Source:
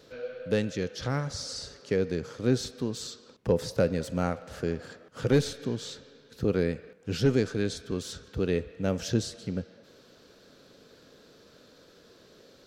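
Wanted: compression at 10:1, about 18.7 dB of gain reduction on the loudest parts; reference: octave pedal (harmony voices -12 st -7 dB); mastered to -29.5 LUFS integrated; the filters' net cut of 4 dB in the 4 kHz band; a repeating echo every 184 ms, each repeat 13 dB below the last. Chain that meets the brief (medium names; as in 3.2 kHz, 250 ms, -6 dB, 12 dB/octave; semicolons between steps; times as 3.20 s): peaking EQ 4 kHz -5 dB; compression 10:1, threshold -38 dBFS; feedback delay 184 ms, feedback 22%, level -13 dB; harmony voices -12 st -7 dB; trim +14 dB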